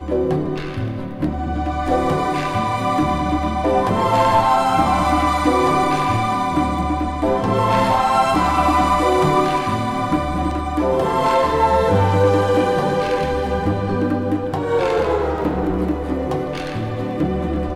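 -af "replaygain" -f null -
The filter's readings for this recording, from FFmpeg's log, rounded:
track_gain = +0.3 dB
track_peak = 0.466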